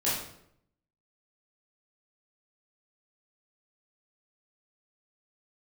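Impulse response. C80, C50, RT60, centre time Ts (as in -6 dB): 6.0 dB, 2.0 dB, 0.75 s, 55 ms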